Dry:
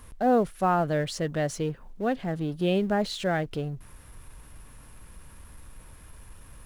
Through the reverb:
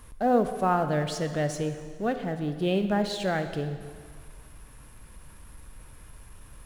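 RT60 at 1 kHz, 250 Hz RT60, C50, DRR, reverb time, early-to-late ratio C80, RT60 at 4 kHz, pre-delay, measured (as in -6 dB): 1.9 s, 1.9 s, 9.0 dB, 7.5 dB, 1.9 s, 10.0 dB, 1.8 s, 5 ms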